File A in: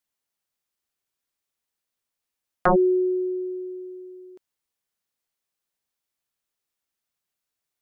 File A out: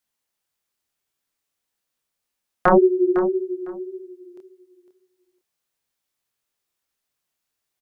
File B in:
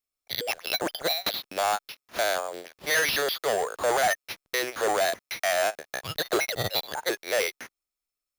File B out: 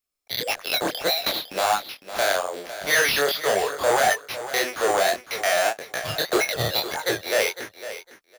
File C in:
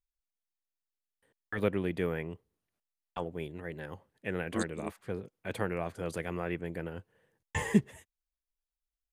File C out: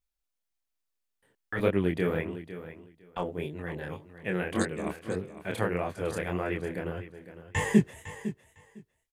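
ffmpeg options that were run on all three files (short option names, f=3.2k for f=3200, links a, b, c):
-af "flanger=delay=20:depth=7.9:speed=1.7,aecho=1:1:505|1010:0.224|0.0381,volume=7dB"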